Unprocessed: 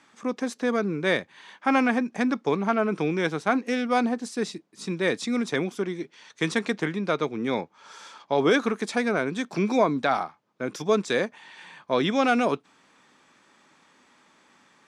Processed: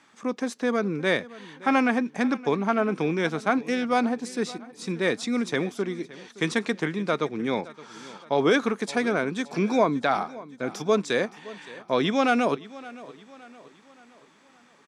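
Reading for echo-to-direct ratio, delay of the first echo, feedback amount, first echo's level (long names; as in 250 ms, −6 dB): −18.0 dB, 568 ms, 46%, −19.0 dB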